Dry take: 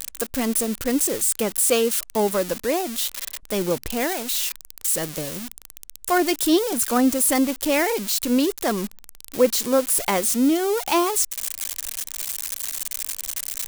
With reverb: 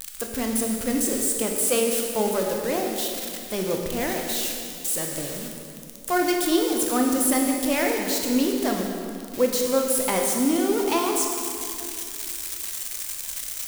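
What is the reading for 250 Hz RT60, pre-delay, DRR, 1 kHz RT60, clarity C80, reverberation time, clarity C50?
3.0 s, 20 ms, 1.0 dB, 2.3 s, 3.5 dB, 2.5 s, 2.5 dB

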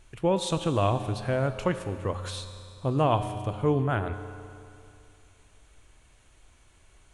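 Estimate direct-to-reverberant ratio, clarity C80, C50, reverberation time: 9.0 dB, 10.5 dB, 10.0 dB, 2.5 s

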